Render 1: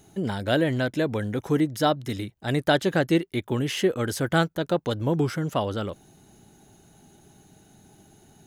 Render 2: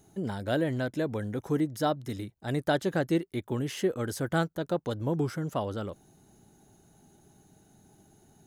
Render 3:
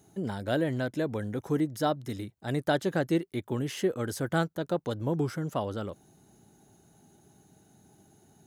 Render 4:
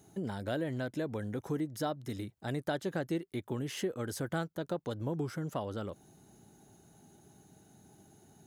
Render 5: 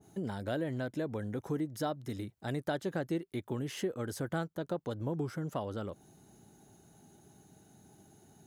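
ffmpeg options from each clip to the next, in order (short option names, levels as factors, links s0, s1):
-af "equalizer=f=2800:w=1:g=-5.5,volume=0.562"
-af "highpass=66"
-af "acompressor=threshold=0.0158:ratio=2"
-af "adynamicequalizer=threshold=0.00316:dfrequency=1700:dqfactor=0.7:tfrequency=1700:tqfactor=0.7:attack=5:release=100:ratio=0.375:range=1.5:mode=cutabove:tftype=highshelf"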